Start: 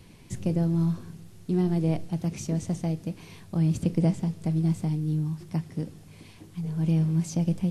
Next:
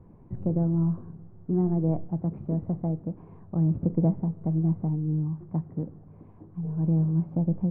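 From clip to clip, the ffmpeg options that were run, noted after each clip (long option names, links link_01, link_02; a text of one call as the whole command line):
ffmpeg -i in.wav -af "lowpass=frequency=1100:width=0.5412,lowpass=frequency=1100:width=1.3066" out.wav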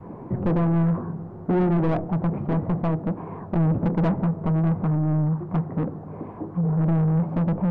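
ffmpeg -i in.wav -filter_complex "[0:a]asplit=2[link_01][link_02];[link_02]highpass=frequency=720:poles=1,volume=32dB,asoftclip=type=tanh:threshold=-12.5dB[link_03];[link_01][link_03]amix=inputs=2:normalize=0,lowpass=frequency=1000:poles=1,volume=-6dB,adynamicequalizer=threshold=0.0178:dfrequency=390:dqfactor=0.95:tfrequency=390:tqfactor=0.95:attack=5:release=100:ratio=0.375:range=2:mode=cutabove:tftype=bell" out.wav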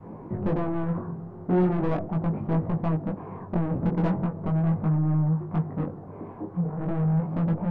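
ffmpeg -i in.wav -af "flanger=delay=18.5:depth=4.1:speed=0.39" out.wav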